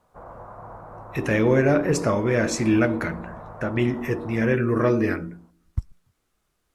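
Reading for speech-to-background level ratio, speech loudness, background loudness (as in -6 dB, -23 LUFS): 19.0 dB, -22.5 LUFS, -41.5 LUFS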